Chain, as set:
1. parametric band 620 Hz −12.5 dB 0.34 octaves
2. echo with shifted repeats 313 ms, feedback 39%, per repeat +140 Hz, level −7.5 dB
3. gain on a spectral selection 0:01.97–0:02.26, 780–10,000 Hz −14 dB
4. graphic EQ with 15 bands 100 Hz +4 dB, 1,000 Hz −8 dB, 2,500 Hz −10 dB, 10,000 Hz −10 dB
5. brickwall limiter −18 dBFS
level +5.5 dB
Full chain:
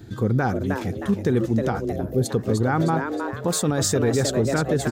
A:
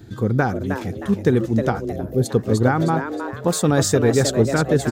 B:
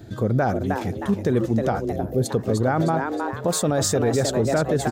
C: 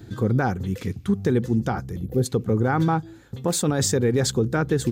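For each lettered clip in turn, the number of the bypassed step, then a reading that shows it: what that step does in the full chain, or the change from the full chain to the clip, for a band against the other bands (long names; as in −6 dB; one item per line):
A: 5, change in crest factor +5.0 dB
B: 1, 1 kHz band +2.5 dB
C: 2, change in momentary loudness spread +2 LU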